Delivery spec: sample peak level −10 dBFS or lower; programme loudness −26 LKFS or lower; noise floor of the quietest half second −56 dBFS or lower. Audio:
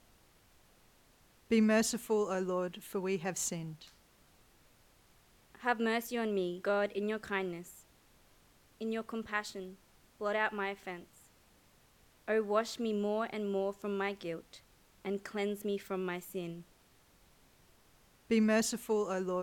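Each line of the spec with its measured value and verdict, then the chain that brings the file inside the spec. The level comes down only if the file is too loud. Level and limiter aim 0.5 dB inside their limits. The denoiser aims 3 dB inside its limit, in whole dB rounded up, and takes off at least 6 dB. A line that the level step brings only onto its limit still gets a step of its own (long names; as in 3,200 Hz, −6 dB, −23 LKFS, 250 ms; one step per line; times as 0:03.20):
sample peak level −17.0 dBFS: in spec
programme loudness −35.0 LKFS: in spec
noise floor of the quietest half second −66 dBFS: in spec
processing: no processing needed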